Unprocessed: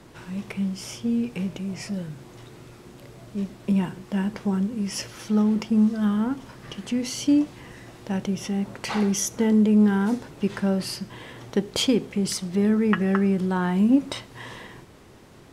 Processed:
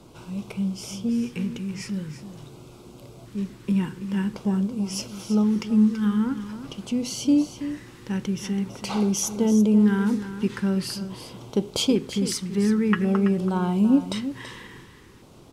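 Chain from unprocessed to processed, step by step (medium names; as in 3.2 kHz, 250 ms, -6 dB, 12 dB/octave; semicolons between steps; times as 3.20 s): LFO notch square 0.46 Hz 660–1800 Hz; on a send: delay 331 ms -11.5 dB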